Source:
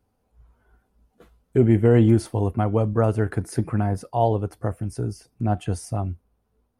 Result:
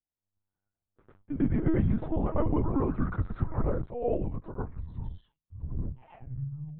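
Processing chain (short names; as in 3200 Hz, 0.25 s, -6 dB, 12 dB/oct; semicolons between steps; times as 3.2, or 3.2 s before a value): tape stop at the end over 2.08 s; Doppler pass-by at 2.43, 34 m/s, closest 14 m; LPF 1500 Hz 12 dB/oct; gate with hold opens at -57 dBFS; tilt shelf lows -3.5 dB, about 1100 Hz; compressor 5:1, threshold -33 dBFS, peak gain reduction 12.5 dB; reverse echo 0.107 s -7.5 dB; frequency shift -160 Hz; LPC vocoder at 8 kHz pitch kept; gain +9 dB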